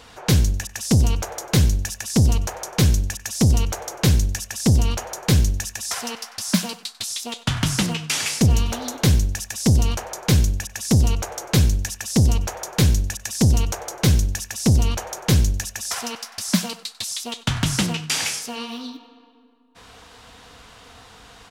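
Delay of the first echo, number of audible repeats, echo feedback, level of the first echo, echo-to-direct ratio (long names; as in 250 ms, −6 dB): 95 ms, 2, 32%, −19.5 dB, −19.0 dB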